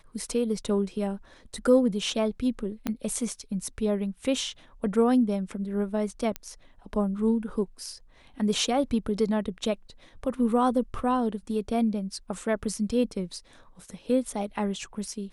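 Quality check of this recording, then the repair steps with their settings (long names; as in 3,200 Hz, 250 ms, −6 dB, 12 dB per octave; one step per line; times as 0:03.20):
0:02.87: click −15 dBFS
0:06.36: click −15 dBFS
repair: click removal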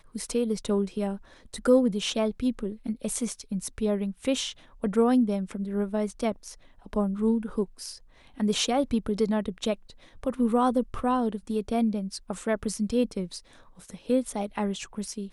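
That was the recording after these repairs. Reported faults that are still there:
0:02.87: click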